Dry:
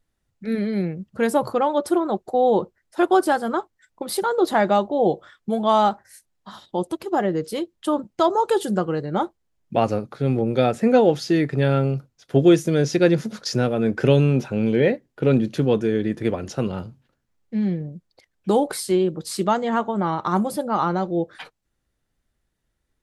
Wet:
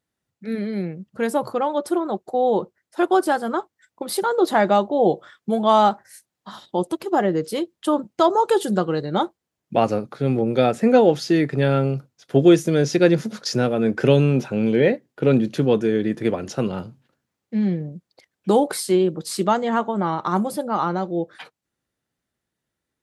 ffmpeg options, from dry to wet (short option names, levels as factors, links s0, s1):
-filter_complex "[0:a]asettb=1/sr,asplit=3[s0][s1][s2];[s0]atrim=end=8.724[s3];[s1]atrim=start=8.72:end=9.23,asetpts=PTS-STARTPTS,afade=t=in:d=0.004:c=qsin,afade=t=out:st=0.506:d=0.004:c=qsin,equalizer=f=3800:t=o:w=0.31:g=12[s4];[s2]atrim=start=9.226[s5];[s3][s4]acrossfade=d=0.004:c1=hsin:c2=qsin[s6];[s6][s5]acrossfade=d=0.004:c1=qsin:c2=hsin,highpass=120,dynaudnorm=f=390:g=21:m=3.76,volume=0.794"